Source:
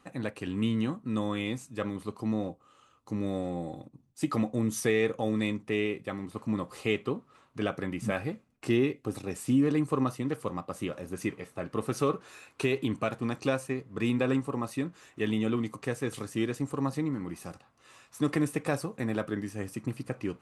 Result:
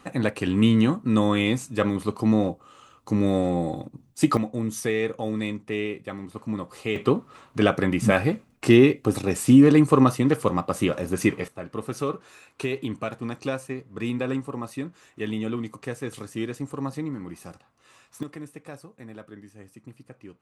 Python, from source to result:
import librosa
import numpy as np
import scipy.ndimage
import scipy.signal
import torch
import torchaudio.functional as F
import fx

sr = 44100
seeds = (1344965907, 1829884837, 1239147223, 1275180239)

y = fx.gain(x, sr, db=fx.steps((0.0, 10.0), (4.37, 1.0), (6.96, 11.0), (11.48, 0.0), (18.23, -11.0)))